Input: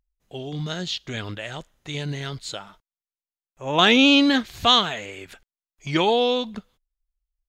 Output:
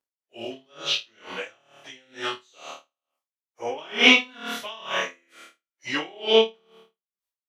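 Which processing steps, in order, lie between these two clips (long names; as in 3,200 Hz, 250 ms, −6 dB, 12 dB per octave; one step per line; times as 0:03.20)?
phase-vocoder pitch shift without resampling −2 semitones
high-pass filter 440 Hz 12 dB per octave
on a send: flutter between parallel walls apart 4.6 metres, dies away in 0.61 s
on the sum: tremolo with a sine in dB 2.2 Hz, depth 33 dB
level +7 dB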